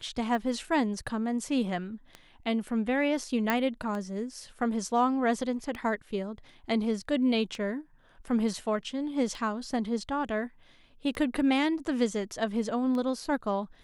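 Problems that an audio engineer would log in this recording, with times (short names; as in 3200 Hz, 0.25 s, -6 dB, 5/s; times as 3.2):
tick 33 1/3 rpm -24 dBFS
3.5 pop -12 dBFS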